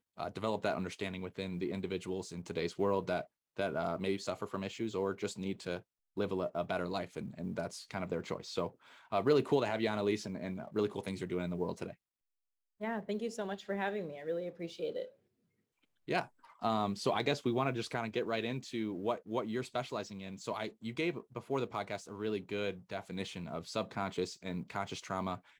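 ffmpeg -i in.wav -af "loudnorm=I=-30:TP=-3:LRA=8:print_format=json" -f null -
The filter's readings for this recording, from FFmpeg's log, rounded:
"input_i" : "-37.5",
"input_tp" : "-16.7",
"input_lra" : "5.4",
"input_thresh" : "-47.6",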